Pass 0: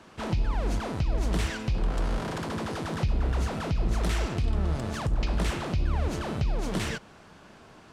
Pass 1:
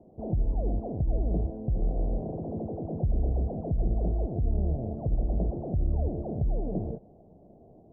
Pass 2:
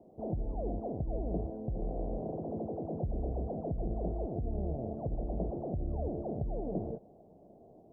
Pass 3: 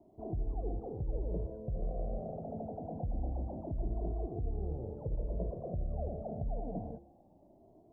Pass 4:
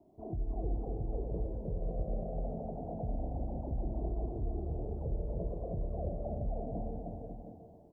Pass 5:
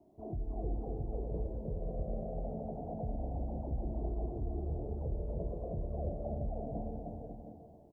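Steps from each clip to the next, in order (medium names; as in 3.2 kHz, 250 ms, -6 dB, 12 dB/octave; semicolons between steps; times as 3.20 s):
Chebyshev low-pass 720 Hz, order 5
bass shelf 180 Hz -10.5 dB
de-hum 69.13 Hz, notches 9; Shepard-style flanger rising 0.26 Hz; trim +1.5 dB
doubling 24 ms -12 dB; on a send: bouncing-ball echo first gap 310 ms, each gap 0.75×, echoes 5; on the sum: trim -1.5 dB
doubling 14 ms -11 dB; trim -1 dB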